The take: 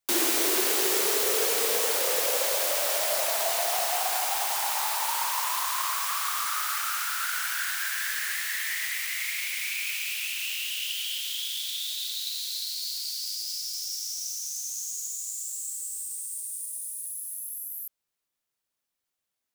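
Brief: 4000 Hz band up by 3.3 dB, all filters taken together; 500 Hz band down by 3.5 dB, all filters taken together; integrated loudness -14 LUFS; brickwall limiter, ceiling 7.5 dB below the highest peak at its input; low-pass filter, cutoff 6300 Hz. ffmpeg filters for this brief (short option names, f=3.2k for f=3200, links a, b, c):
-af "lowpass=6.3k,equalizer=f=500:t=o:g=-4.5,equalizer=f=4k:t=o:g=5,volume=15.5dB,alimiter=limit=-6dB:level=0:latency=1"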